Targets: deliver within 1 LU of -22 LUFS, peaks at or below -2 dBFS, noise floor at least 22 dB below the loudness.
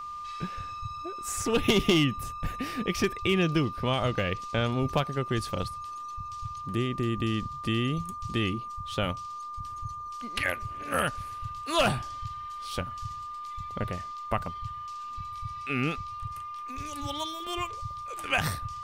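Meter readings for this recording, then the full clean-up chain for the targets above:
steady tone 1.2 kHz; tone level -36 dBFS; loudness -31.0 LUFS; peak level -11.5 dBFS; loudness target -22.0 LUFS
-> band-stop 1.2 kHz, Q 30; trim +9 dB

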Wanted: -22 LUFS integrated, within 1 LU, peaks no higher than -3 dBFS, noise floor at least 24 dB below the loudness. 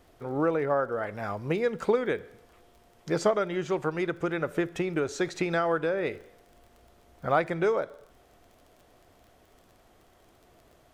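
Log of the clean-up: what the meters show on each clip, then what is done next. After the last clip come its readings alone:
tick rate 27 per s; loudness -29.0 LUFS; peak level -11.5 dBFS; loudness target -22.0 LUFS
-> de-click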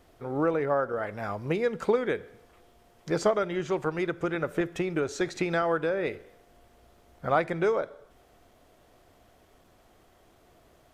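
tick rate 0 per s; loudness -29.0 LUFS; peak level -11.5 dBFS; loudness target -22.0 LUFS
-> trim +7 dB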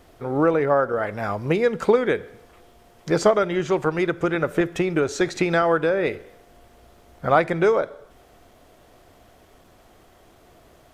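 loudness -22.0 LUFS; peak level -4.5 dBFS; noise floor -54 dBFS

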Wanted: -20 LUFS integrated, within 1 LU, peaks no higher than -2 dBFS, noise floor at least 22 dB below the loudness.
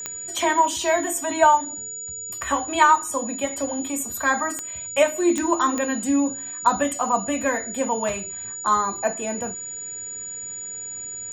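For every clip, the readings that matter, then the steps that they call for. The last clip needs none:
clicks found 4; steady tone 6.9 kHz; tone level -31 dBFS; loudness -23.0 LUFS; peak level -4.0 dBFS; loudness target -20.0 LUFS
-> de-click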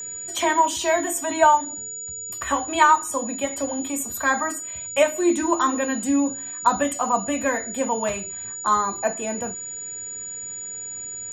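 clicks found 0; steady tone 6.9 kHz; tone level -31 dBFS
-> band-stop 6.9 kHz, Q 30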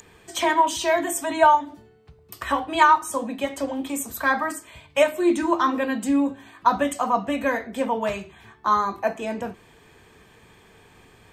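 steady tone not found; loudness -23.0 LUFS; peak level -4.0 dBFS; loudness target -20.0 LUFS
-> trim +3 dB; peak limiter -2 dBFS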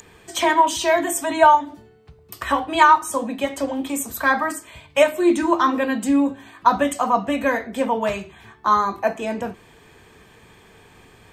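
loudness -20.0 LUFS; peak level -2.0 dBFS; noise floor -51 dBFS

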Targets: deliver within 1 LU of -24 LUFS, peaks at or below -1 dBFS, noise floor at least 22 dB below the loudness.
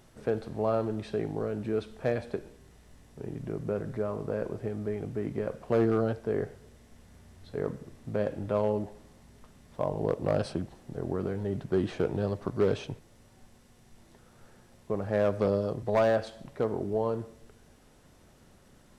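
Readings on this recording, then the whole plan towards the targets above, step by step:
clipped samples 0.3%; clipping level -18.0 dBFS; loudness -31.5 LUFS; peak level -18.0 dBFS; loudness target -24.0 LUFS
-> clip repair -18 dBFS; trim +7.5 dB

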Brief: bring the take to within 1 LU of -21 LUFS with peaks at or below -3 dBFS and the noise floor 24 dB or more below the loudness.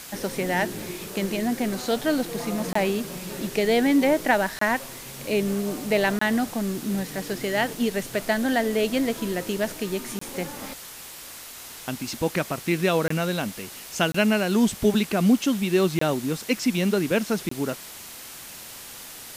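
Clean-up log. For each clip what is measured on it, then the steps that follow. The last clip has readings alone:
dropouts 8; longest dropout 24 ms; noise floor -41 dBFS; noise floor target -49 dBFS; loudness -25.0 LUFS; peak level -8.0 dBFS; loudness target -21.0 LUFS
-> interpolate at 2.73/4.59/6.19/10.19/13.08/14.12/15.99/17.49 s, 24 ms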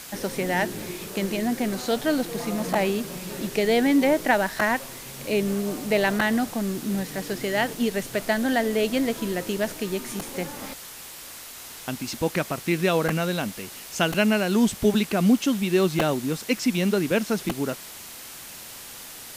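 dropouts 0; noise floor -41 dBFS; noise floor target -49 dBFS
-> noise reduction 8 dB, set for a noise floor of -41 dBFS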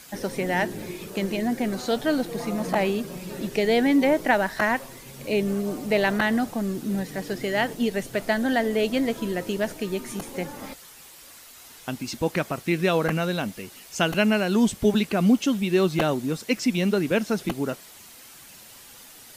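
noise floor -47 dBFS; noise floor target -49 dBFS
-> noise reduction 6 dB, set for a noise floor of -47 dBFS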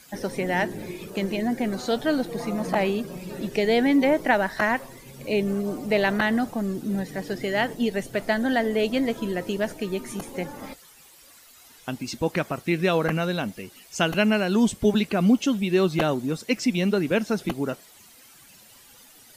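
noise floor -52 dBFS; loudness -25.0 LUFS; peak level -8.0 dBFS; loudness target -21.0 LUFS
-> trim +4 dB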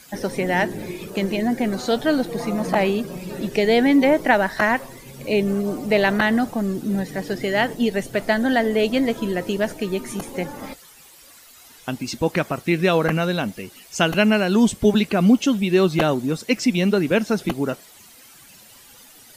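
loudness -21.0 LUFS; peak level -4.0 dBFS; noise floor -48 dBFS

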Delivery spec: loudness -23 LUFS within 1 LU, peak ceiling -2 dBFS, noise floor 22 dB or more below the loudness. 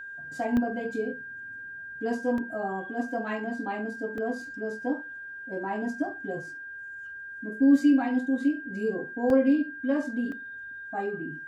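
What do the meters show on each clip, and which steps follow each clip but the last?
dropouts 5; longest dropout 1.6 ms; steady tone 1.6 kHz; tone level -38 dBFS; loudness -28.5 LUFS; peak level -10.5 dBFS; loudness target -23.0 LUFS
-> interpolate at 0.57/2.38/4.18/9.30/10.32 s, 1.6 ms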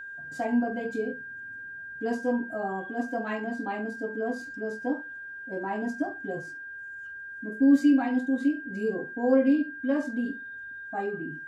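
dropouts 0; steady tone 1.6 kHz; tone level -38 dBFS
-> band-stop 1.6 kHz, Q 30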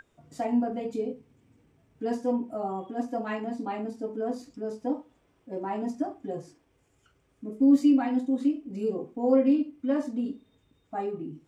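steady tone not found; loudness -28.5 LUFS; peak level -11.0 dBFS; loudness target -23.0 LUFS
-> trim +5.5 dB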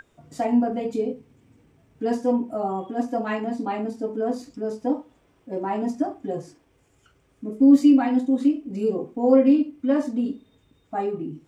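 loudness -23.0 LUFS; peak level -5.5 dBFS; noise floor -63 dBFS

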